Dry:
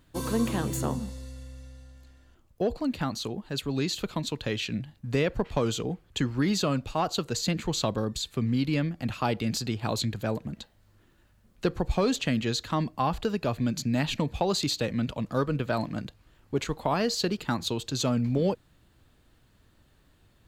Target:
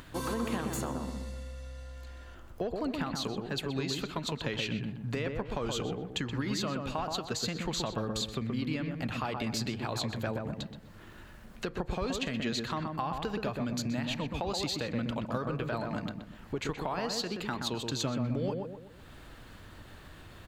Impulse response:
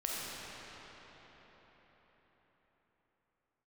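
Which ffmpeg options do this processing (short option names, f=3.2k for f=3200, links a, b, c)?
-filter_complex "[0:a]equalizer=f=1.5k:w=0.44:g=6.5,acompressor=mode=upward:threshold=-37dB:ratio=2.5,alimiter=limit=-16dB:level=0:latency=1:release=212,acompressor=threshold=-28dB:ratio=6,asplit=2[a][b];[b]adelay=125,lowpass=f=1.3k:p=1,volume=-3dB,asplit=2[c][d];[d]adelay=125,lowpass=f=1.3k:p=1,volume=0.45,asplit=2[e][f];[f]adelay=125,lowpass=f=1.3k:p=1,volume=0.45,asplit=2[g][h];[h]adelay=125,lowpass=f=1.3k:p=1,volume=0.45,asplit=2[i][j];[j]adelay=125,lowpass=f=1.3k:p=1,volume=0.45,asplit=2[k][l];[l]adelay=125,lowpass=f=1.3k:p=1,volume=0.45[m];[a][c][e][g][i][k][m]amix=inputs=7:normalize=0,volume=-2.5dB"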